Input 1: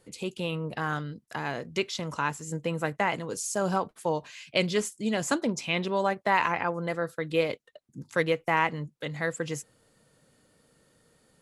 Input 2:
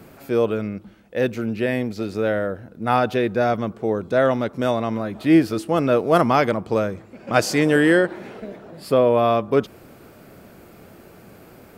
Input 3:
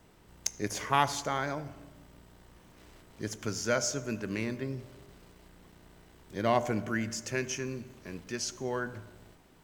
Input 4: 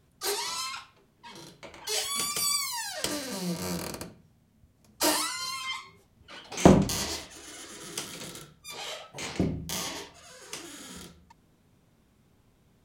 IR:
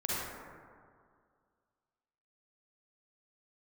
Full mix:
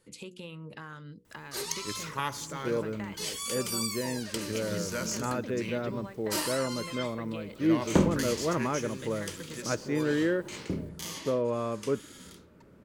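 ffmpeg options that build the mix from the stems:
-filter_complex "[0:a]bandreject=f=60:t=h:w=6,bandreject=f=120:t=h:w=6,bandreject=f=180:t=h:w=6,bandreject=f=240:t=h:w=6,bandreject=f=300:t=h:w=6,bandreject=f=360:t=h:w=6,bandreject=f=420:t=h:w=6,bandreject=f=480:t=h:w=6,bandreject=f=540:t=h:w=6,acompressor=threshold=0.0158:ratio=6,volume=0.668[s0];[1:a]lowpass=f=1200:p=1,adelay=2350,volume=0.316[s1];[2:a]highshelf=f=9300:g=10,adelay=1250,volume=0.531[s2];[3:a]adelay=1300,volume=0.531[s3];[s0][s1][s2][s3]amix=inputs=4:normalize=0,equalizer=f=720:t=o:w=0.24:g=-14"

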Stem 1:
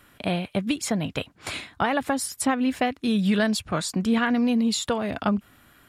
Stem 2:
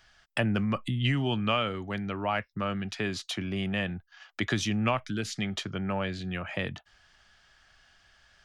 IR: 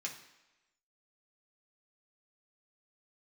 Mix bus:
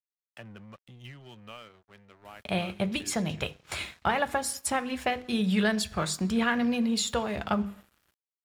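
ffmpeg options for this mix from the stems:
-filter_complex "[0:a]equalizer=f=67:t=o:w=0.73:g=11.5,bandreject=f=50:t=h:w=6,bandreject=f=100:t=h:w=6,bandreject=f=150:t=h:w=6,bandreject=f=200:t=h:w=6,bandreject=f=250:t=h:w=6,bandreject=f=300:t=h:w=6,bandreject=f=350:t=h:w=6,bandreject=f=400:t=h:w=6,bandreject=f=450:t=h:w=6,bandreject=f=500:t=h:w=6,adelay=2250,volume=0.631,asplit=2[s0][s1];[s1]volume=0.473[s2];[1:a]volume=0.15,asplit=3[s3][s4][s5];[s3]atrim=end=3.42,asetpts=PTS-STARTPTS,afade=t=out:st=3.416:d=0.004:c=hsin[s6];[s4]atrim=start=3.42:end=6.35,asetpts=PTS-STARTPTS,volume=0[s7];[s5]atrim=start=6.35,asetpts=PTS-STARTPTS,afade=t=in:d=0.004:c=hsin[s8];[s6][s7][s8]concat=n=3:v=0:a=1[s9];[2:a]atrim=start_sample=2205[s10];[s2][s10]afir=irnorm=-1:irlink=0[s11];[s0][s9][s11]amix=inputs=3:normalize=0,equalizer=f=270:w=8:g=-10.5,aeval=exprs='sgn(val(0))*max(abs(val(0))-0.00224,0)':c=same"

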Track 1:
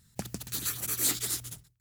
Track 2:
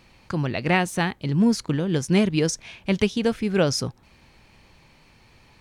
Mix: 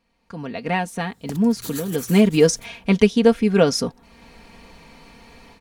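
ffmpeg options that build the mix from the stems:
-filter_complex "[0:a]adelay=1100,volume=0.355[s0];[1:a]equalizer=f=11000:w=2.4:g=3.5,aecho=1:1:4.3:0.69,volume=0.447,afade=t=in:st=1.9:d=0.74:silence=0.251189,asplit=2[s1][s2];[s2]apad=whole_len=127967[s3];[s0][s3]sidechaincompress=threshold=0.00708:ratio=5:attack=5.9:release=229[s4];[s4][s1]amix=inputs=2:normalize=0,equalizer=f=480:w=0.44:g=5,dynaudnorm=f=240:g=3:m=3.98"

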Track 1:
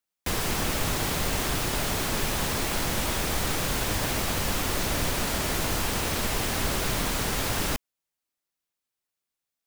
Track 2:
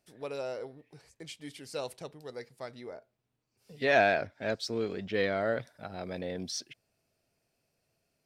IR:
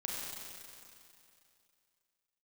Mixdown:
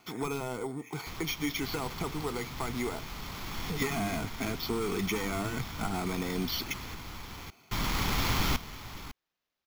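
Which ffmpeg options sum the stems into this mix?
-filter_complex "[0:a]adelay=800,volume=0.596,asplit=3[s0][s1][s2];[s0]atrim=end=6.95,asetpts=PTS-STARTPTS,afade=t=out:st=6.946:d=0.004:c=hsin[s3];[s1]atrim=start=6.95:end=7.71,asetpts=PTS-STARTPTS,volume=0[s4];[s2]atrim=start=7.71,asetpts=PTS-STARTPTS,afade=t=in:d=0.004:c=hsin[s5];[s3][s4][s5]concat=n=3:v=0:a=1,asplit=2[s6][s7];[s7]volume=0.178[s8];[1:a]asplit=2[s9][s10];[s10]highpass=f=720:p=1,volume=25.1,asoftclip=type=tanh:threshold=0.251[s11];[s9][s11]amix=inputs=2:normalize=0,lowpass=f=1800:p=1,volume=0.501,acrossover=split=380|4800[s12][s13][s14];[s12]acompressor=threshold=0.0141:ratio=4[s15];[s13]acompressor=threshold=0.0126:ratio=4[s16];[s14]acompressor=threshold=0.00141:ratio=4[s17];[s15][s16][s17]amix=inputs=3:normalize=0,volume=1.19,asplit=2[s18][s19];[s19]apad=whole_len=461593[s20];[s6][s20]sidechaincompress=threshold=0.00355:ratio=6:attack=11:release=1160[s21];[s8]aecho=0:1:553:1[s22];[s21][s18][s22]amix=inputs=3:normalize=0,aecho=1:1:0.9:0.99,acrusher=samples=5:mix=1:aa=0.000001"

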